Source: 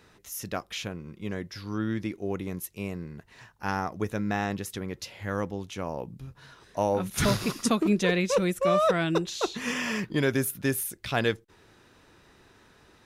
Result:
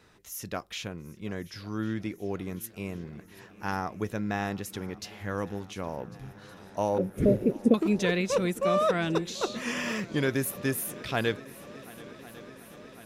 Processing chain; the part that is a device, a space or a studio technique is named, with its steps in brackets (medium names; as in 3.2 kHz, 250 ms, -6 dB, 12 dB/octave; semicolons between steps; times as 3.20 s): 6.98–7.74 s: FFT filter 150 Hz 0 dB, 240 Hz +7 dB, 550 Hz +11 dB, 960 Hz -27 dB, 2.2 kHz -13 dB, 4.6 kHz -30 dB, 12 kHz -15 dB; multi-head tape echo (multi-head delay 367 ms, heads second and third, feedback 75%, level -21.5 dB; wow and flutter 24 cents); trim -2 dB